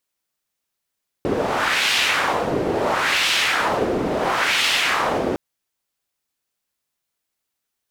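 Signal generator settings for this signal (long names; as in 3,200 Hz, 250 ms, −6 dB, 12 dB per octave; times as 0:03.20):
wind from filtered noise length 4.11 s, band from 370 Hz, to 3,000 Hz, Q 1.6, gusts 3, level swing 3 dB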